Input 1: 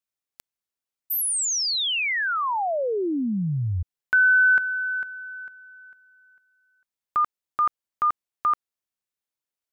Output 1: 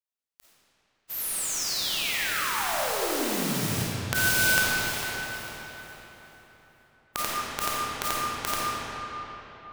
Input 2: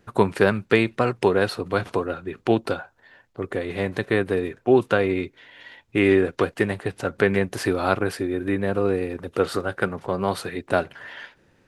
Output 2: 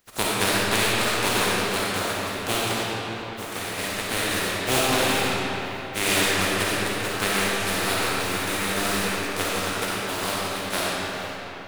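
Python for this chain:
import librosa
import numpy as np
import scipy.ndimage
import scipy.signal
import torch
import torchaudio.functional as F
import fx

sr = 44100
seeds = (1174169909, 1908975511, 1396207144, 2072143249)

y = fx.spec_flatten(x, sr, power=0.26)
y = fx.rev_freeverb(y, sr, rt60_s=4.1, hf_ratio=0.65, predelay_ms=10, drr_db=-7.0)
y = y * 10.0 ** (-8.5 / 20.0)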